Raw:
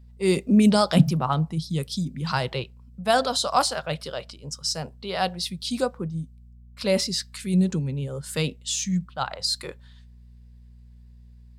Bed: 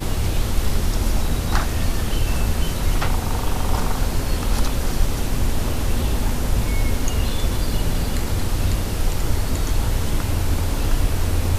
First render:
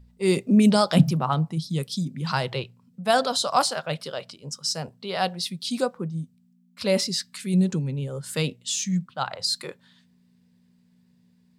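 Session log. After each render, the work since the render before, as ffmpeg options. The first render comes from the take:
ffmpeg -i in.wav -af "bandreject=frequency=60:width_type=h:width=4,bandreject=frequency=120:width_type=h:width=4" out.wav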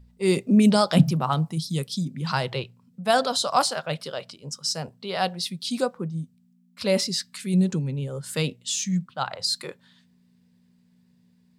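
ffmpeg -i in.wav -filter_complex "[0:a]asettb=1/sr,asplit=3[link_01][link_02][link_03];[link_01]atrim=end=1.204[link_04];[link_02]atrim=start=1.2:end=1.8,asetpts=PTS-STARTPTS,afade=type=in:duration=0.004:curve=qsin,afade=type=out:start_time=0.596:duration=0.004:curve=qsin,aemphasis=mode=production:type=cd[link_05];[link_03]atrim=start=1.796[link_06];[link_04][link_05]acrossfade=duration=0.004:curve1=hsin:curve2=qsin[link_07];[link_07][link_06]acrossfade=duration=0.004:curve1=qsin:curve2=hsin" out.wav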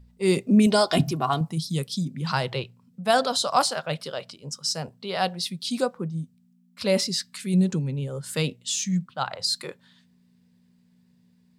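ffmpeg -i in.wav -filter_complex "[0:a]asettb=1/sr,asplit=3[link_01][link_02][link_03];[link_01]atrim=end=0.664[link_04];[link_02]atrim=start=0.66:end=1.41,asetpts=PTS-STARTPTS,afade=type=in:duration=0.004:curve=qsin,afade=type=out:start_time=0.746:duration=0.004:curve=qsin,aecho=1:1:2.8:0.65,atrim=end_sample=33075[link_05];[link_03]atrim=start=1.406[link_06];[link_04][link_05]acrossfade=duration=0.004:curve1=hsin:curve2=qsin[link_07];[link_07][link_06]acrossfade=duration=0.004:curve1=qsin:curve2=hsin" out.wav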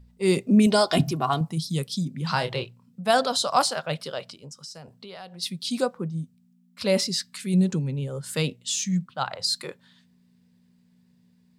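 ffmpeg -i in.wav -filter_complex "[0:a]asettb=1/sr,asplit=3[link_01][link_02][link_03];[link_01]atrim=end=2.284[link_04];[link_02]atrim=start=2.28:end=3.01,asetpts=PTS-STARTPTS,afade=type=in:duration=0.004:curve=qsin,afade=type=out:start_time=0.726:duration=0.004:curve=qsin,asplit=2[link_05][link_06];[link_06]adelay=26,volume=-8dB[link_07];[link_05][link_07]amix=inputs=2:normalize=0,atrim=end_sample=32193[link_08];[link_03]atrim=start=3.006[link_09];[link_04][link_08]acrossfade=duration=0.004:curve1=hsin:curve2=qsin[link_10];[link_10][link_09]acrossfade=duration=0.004:curve1=qsin:curve2=hsin,asplit=3[link_11][link_12][link_13];[link_11]afade=type=out:start_time=4.42:duration=0.02[link_14];[link_12]acompressor=threshold=-39dB:ratio=5:attack=3.2:release=140:knee=1:detection=peak,afade=type=in:start_time=4.42:duration=0.02,afade=type=out:start_time=5.41:duration=0.02[link_15];[link_13]afade=type=in:start_time=5.41:duration=0.02[link_16];[link_14][link_15][link_16]amix=inputs=3:normalize=0" out.wav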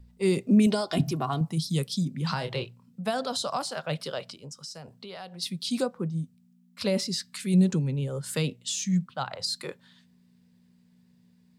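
ffmpeg -i in.wav -filter_complex "[0:a]alimiter=limit=-12.5dB:level=0:latency=1:release=358,acrossover=split=390[link_01][link_02];[link_02]acompressor=threshold=-30dB:ratio=2.5[link_03];[link_01][link_03]amix=inputs=2:normalize=0" out.wav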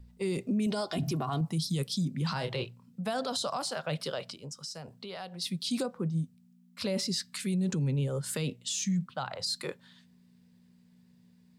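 ffmpeg -i in.wav -af "alimiter=limit=-23.5dB:level=0:latency=1:release=28" out.wav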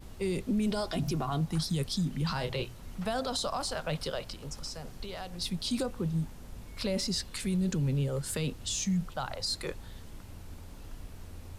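ffmpeg -i in.wav -i bed.wav -filter_complex "[1:a]volume=-25.5dB[link_01];[0:a][link_01]amix=inputs=2:normalize=0" out.wav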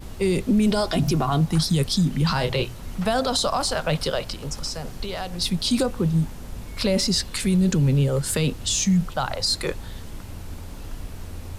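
ffmpeg -i in.wav -af "volume=10dB" out.wav

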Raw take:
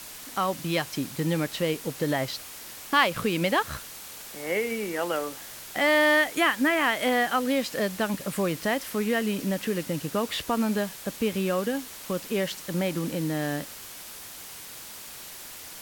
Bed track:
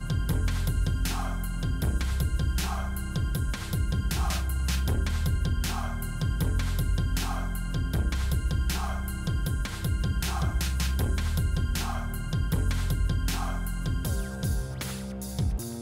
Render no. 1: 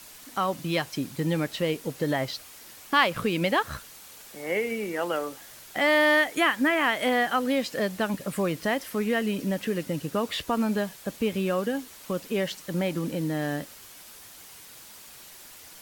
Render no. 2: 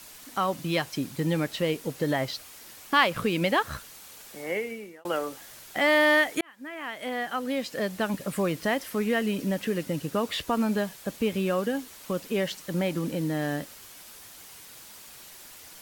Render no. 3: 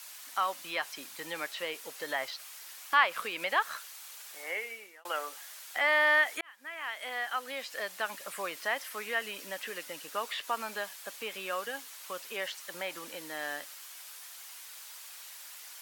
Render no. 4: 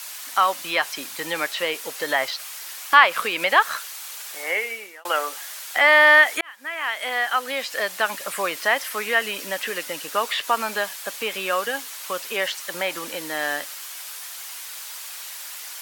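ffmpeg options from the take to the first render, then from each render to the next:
ffmpeg -i in.wav -af "afftdn=noise_reduction=6:noise_floor=-42" out.wav
ffmpeg -i in.wav -filter_complex "[0:a]asplit=3[link_01][link_02][link_03];[link_01]atrim=end=5.05,asetpts=PTS-STARTPTS,afade=type=out:start_time=4.38:duration=0.67[link_04];[link_02]atrim=start=5.05:end=6.41,asetpts=PTS-STARTPTS,afade=type=in:duration=0.004:curve=hsin,afade=type=out:start_time=1.356:duration=0.004:curve=hsin[link_05];[link_03]atrim=start=6.41,asetpts=PTS-STARTPTS,afade=type=in:duration=1.78[link_06];[link_04][link_05][link_06]concat=n=3:v=0:a=1" out.wav
ffmpeg -i in.wav -filter_complex "[0:a]highpass=950,acrossover=split=2500[link_01][link_02];[link_02]acompressor=threshold=-39dB:ratio=4:attack=1:release=60[link_03];[link_01][link_03]amix=inputs=2:normalize=0" out.wav
ffmpeg -i in.wav -af "volume=11.5dB,alimiter=limit=-1dB:level=0:latency=1" out.wav

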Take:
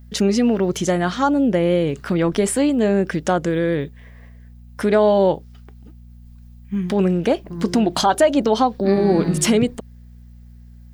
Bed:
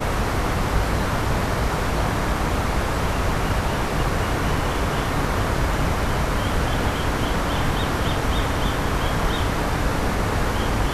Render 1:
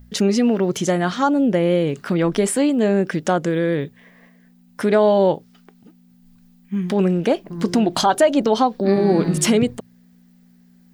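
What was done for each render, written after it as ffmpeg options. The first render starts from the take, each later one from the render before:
ffmpeg -i in.wav -af "bandreject=frequency=60:width_type=h:width=4,bandreject=frequency=120:width_type=h:width=4" out.wav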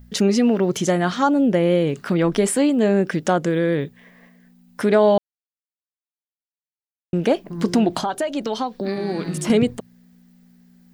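ffmpeg -i in.wav -filter_complex "[0:a]asettb=1/sr,asplit=3[link_01][link_02][link_03];[link_01]atrim=end=7.904[link_04];[link_02]atrim=start=7.9:end=9.5,asetpts=PTS-STARTPTS,afade=type=in:duration=0.004:curve=qsin,afade=type=out:start_time=1.596:duration=0.004:curve=qsin,acrossover=split=82|1400[link_05][link_06][link_07];[link_05]acompressor=threshold=-55dB:ratio=4[link_08];[link_06]acompressor=threshold=-23dB:ratio=4[link_09];[link_07]acompressor=threshold=-32dB:ratio=4[link_10];[link_08][link_09][link_10]amix=inputs=3:normalize=0[link_11];[link_03]atrim=start=9.496[link_12];[link_04][link_11]acrossfade=duration=0.004:curve1=hsin:curve2=qsin[link_13];[link_13][link_12]acrossfade=duration=0.004:curve1=qsin:curve2=hsin,asplit=3[link_14][link_15][link_16];[link_14]atrim=end=5.18,asetpts=PTS-STARTPTS,afade=type=out:start_time=5.176:duration=0.004:curve=hsin[link_17];[link_15]atrim=start=5.18:end=7.13,asetpts=PTS-STARTPTS,volume=0[link_18];[link_16]atrim=start=7.13,asetpts=PTS-STARTPTS,afade=type=in:duration=0.004:curve=hsin[link_19];[link_17][link_18][link_19]concat=n=3:v=0:a=1" out.wav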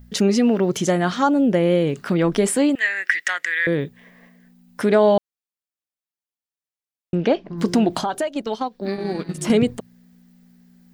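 ffmpeg -i in.wav -filter_complex "[0:a]asettb=1/sr,asplit=3[link_01][link_02][link_03];[link_01]atrim=end=2.754[link_04];[link_02]atrim=start=2.75:end=3.67,asetpts=PTS-STARTPTS,afade=type=in:duration=0.004:curve=qsin,afade=type=out:start_time=0.916:duration=0.004:curve=qsin,highpass=frequency=1900:width_type=q:width=12[link_05];[link_03]atrim=start=3.666[link_06];[link_04][link_05]acrossfade=duration=0.004:curve1=hsin:curve2=qsin[link_07];[link_07][link_06]acrossfade=duration=0.004:curve1=qsin:curve2=hsin,asettb=1/sr,asplit=3[link_08][link_09][link_10];[link_08]atrim=end=7.154[link_11];[link_09]atrim=start=7.15:end=7.58,asetpts=PTS-STARTPTS,afade=type=in:duration=0.004:curve=qsin,afade=type=out:start_time=0.426:duration=0.004:curve=qsin,lowpass=frequency=5200:width=0.5412,lowpass=frequency=5200:width=1.3066[link_12];[link_10]atrim=start=7.576[link_13];[link_11][link_12]acrossfade=duration=0.004:curve1=hsin:curve2=qsin[link_14];[link_14][link_13]acrossfade=duration=0.004:curve1=qsin:curve2=hsin,asplit=3[link_15][link_16][link_17];[link_15]afade=type=out:start_time=8.26:duration=0.02[link_18];[link_16]agate=range=-10dB:threshold=-26dB:ratio=16:release=100:detection=peak,afade=type=in:start_time=8.26:duration=0.02,afade=type=out:start_time=9.4:duration=0.02[link_19];[link_17]afade=type=in:start_time=9.4:duration=0.02[link_20];[link_18][link_19][link_20]amix=inputs=3:normalize=0" out.wav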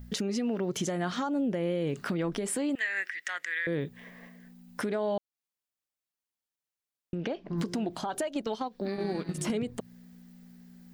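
ffmpeg -i in.wav -af "acompressor=threshold=-26dB:ratio=6,alimiter=limit=-22dB:level=0:latency=1:release=159" out.wav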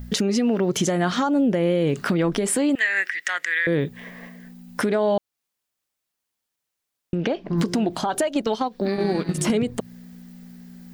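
ffmpeg -i in.wav -af "volume=9.5dB" out.wav

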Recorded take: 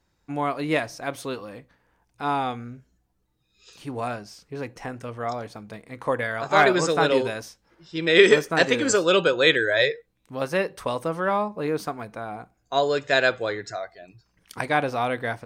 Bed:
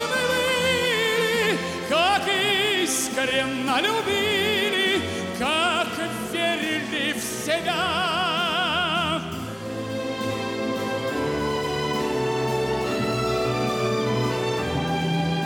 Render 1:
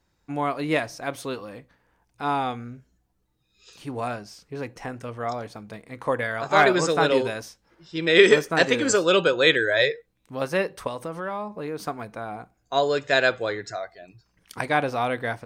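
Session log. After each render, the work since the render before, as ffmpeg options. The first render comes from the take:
ffmpeg -i in.wav -filter_complex "[0:a]asettb=1/sr,asplit=3[link_01][link_02][link_03];[link_01]atrim=end=10.874[link_04];[link_02]atrim=start=10.87:end=11.84,asetpts=PTS-STARTPTS,afade=type=in:duration=0.004:curve=qsin,afade=type=out:start_time=0.966:duration=0.004:curve=qsin,acompressor=threshold=-32dB:ratio=2:attack=3.2:release=140:knee=1:detection=peak[link_05];[link_03]atrim=start=11.836[link_06];[link_04][link_05]acrossfade=duration=0.004:curve1=hsin:curve2=qsin[link_07];[link_07][link_06]acrossfade=duration=0.004:curve1=qsin:curve2=hsin" out.wav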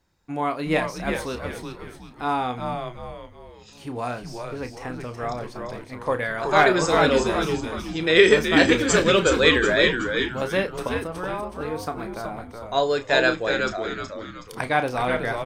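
ffmpeg -i in.wav -filter_complex "[0:a]asplit=2[link_01][link_02];[link_02]adelay=32,volume=-10dB[link_03];[link_01][link_03]amix=inputs=2:normalize=0,asplit=6[link_04][link_05][link_06][link_07][link_08][link_09];[link_05]adelay=371,afreqshift=-110,volume=-5dB[link_10];[link_06]adelay=742,afreqshift=-220,volume=-13dB[link_11];[link_07]adelay=1113,afreqshift=-330,volume=-20.9dB[link_12];[link_08]adelay=1484,afreqshift=-440,volume=-28.9dB[link_13];[link_09]adelay=1855,afreqshift=-550,volume=-36.8dB[link_14];[link_04][link_10][link_11][link_12][link_13][link_14]amix=inputs=6:normalize=0" out.wav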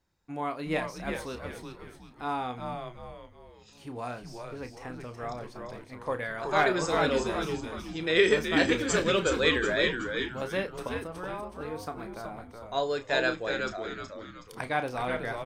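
ffmpeg -i in.wav -af "volume=-7.5dB" out.wav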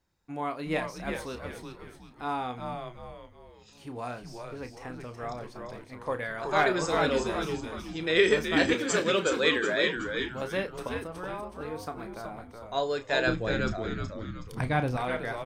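ffmpeg -i in.wav -filter_complex "[0:a]asettb=1/sr,asplit=3[link_01][link_02][link_03];[link_01]atrim=end=8.744[link_04];[link_02]atrim=start=8.74:end=9.96,asetpts=PTS-STARTPTS,afade=type=in:duration=0.004:curve=qsin,afade=type=out:start_time=1.216:duration=0.004:curve=qsin,highpass=170[link_05];[link_03]atrim=start=9.956[link_06];[link_04][link_05]acrossfade=duration=0.004:curve1=hsin:curve2=qsin[link_07];[link_07][link_06]acrossfade=duration=0.004:curve1=qsin:curve2=hsin,asettb=1/sr,asplit=3[link_08][link_09][link_10];[link_08]atrim=end=13.274[link_11];[link_09]atrim=start=13.27:end=14.97,asetpts=PTS-STARTPTS,afade=type=in:duration=0.004:curve=qsin,afade=type=out:start_time=1.696:duration=0.004:curve=qsin,bass=frequency=250:gain=15,treble=frequency=4000:gain=-1[link_12];[link_10]atrim=start=14.966[link_13];[link_11][link_12]acrossfade=duration=0.004:curve1=hsin:curve2=qsin[link_14];[link_14][link_13]acrossfade=duration=0.004:curve1=qsin:curve2=hsin" out.wav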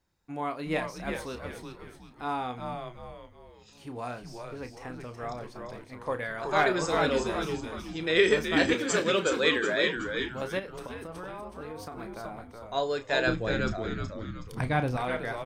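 ffmpeg -i in.wav -filter_complex "[0:a]asplit=3[link_01][link_02][link_03];[link_01]afade=type=out:start_time=10.58:duration=0.02[link_04];[link_02]acompressor=threshold=-35dB:ratio=6:attack=3.2:release=140:knee=1:detection=peak,afade=type=in:start_time=10.58:duration=0.02,afade=type=out:start_time=11.91:duration=0.02[link_05];[link_03]afade=type=in:start_time=11.91:duration=0.02[link_06];[link_04][link_05][link_06]amix=inputs=3:normalize=0" out.wav

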